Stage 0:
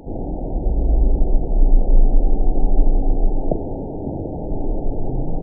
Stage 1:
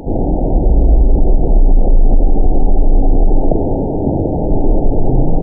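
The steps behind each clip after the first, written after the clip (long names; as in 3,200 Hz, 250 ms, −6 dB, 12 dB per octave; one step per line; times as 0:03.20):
boost into a limiter +12 dB
level −1 dB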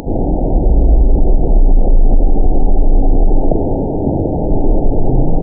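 upward compression, threshold −25 dBFS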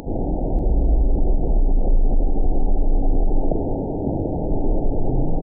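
single-tap delay 589 ms −16.5 dB
level −8 dB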